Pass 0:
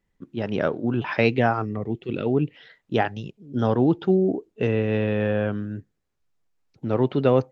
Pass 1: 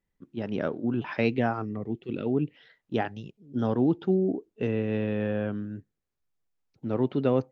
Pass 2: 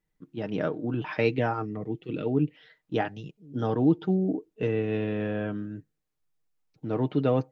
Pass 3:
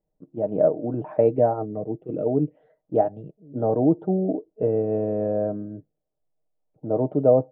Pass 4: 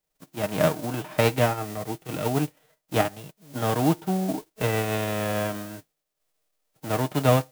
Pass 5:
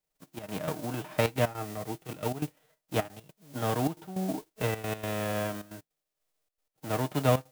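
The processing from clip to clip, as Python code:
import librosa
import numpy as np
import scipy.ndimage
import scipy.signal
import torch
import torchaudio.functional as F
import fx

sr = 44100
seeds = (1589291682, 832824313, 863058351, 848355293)

y1 = fx.dynamic_eq(x, sr, hz=250.0, q=1.2, threshold_db=-34.0, ratio=4.0, max_db=5)
y1 = F.gain(torch.from_numpy(y1), -7.5).numpy()
y2 = y1 + 0.51 * np.pad(y1, (int(6.5 * sr / 1000.0), 0))[:len(y1)]
y3 = fx.lowpass_res(y2, sr, hz=630.0, q=4.9)
y4 = fx.envelope_flatten(y3, sr, power=0.3)
y4 = F.gain(torch.from_numpy(y4), -2.5).numpy()
y5 = fx.step_gate(y4, sr, bpm=155, pattern='xxxx.x.xx', floor_db=-12.0, edge_ms=4.5)
y5 = F.gain(torch.from_numpy(y5), -4.5).numpy()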